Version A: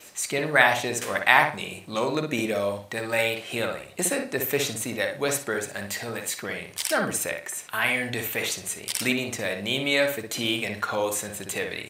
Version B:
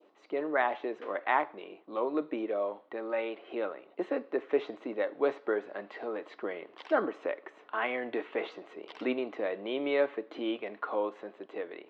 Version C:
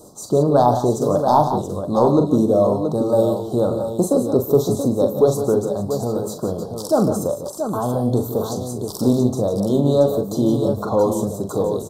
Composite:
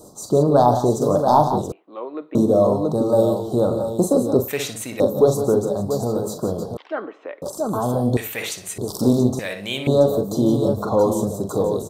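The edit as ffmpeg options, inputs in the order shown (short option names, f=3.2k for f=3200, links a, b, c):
-filter_complex "[1:a]asplit=2[a][b];[0:a]asplit=3[c][d][e];[2:a]asplit=6[f][g][h][i][j][k];[f]atrim=end=1.722[l];[a]atrim=start=1.718:end=2.352[m];[g]atrim=start=2.348:end=4.482[n];[c]atrim=start=4.478:end=5.002[o];[h]atrim=start=4.998:end=6.772[p];[b]atrim=start=6.768:end=7.422[q];[i]atrim=start=7.418:end=8.172[r];[d]atrim=start=8.168:end=8.782[s];[j]atrim=start=8.778:end=9.392[t];[e]atrim=start=9.388:end=9.872[u];[k]atrim=start=9.868[v];[l][m]acrossfade=d=0.004:c1=hsin:c2=hsin[w];[w][n]acrossfade=d=0.004:c1=hsin:c2=hsin[x];[x][o]acrossfade=d=0.004:c1=hsin:c2=hsin[y];[y][p]acrossfade=d=0.004:c1=hsin:c2=hsin[z];[z][q]acrossfade=d=0.004:c1=hsin:c2=hsin[aa];[aa][r]acrossfade=d=0.004:c1=hsin:c2=hsin[ab];[ab][s]acrossfade=d=0.004:c1=hsin:c2=hsin[ac];[ac][t]acrossfade=d=0.004:c1=hsin:c2=hsin[ad];[ad][u]acrossfade=d=0.004:c1=hsin:c2=hsin[ae];[ae][v]acrossfade=d=0.004:c1=hsin:c2=hsin"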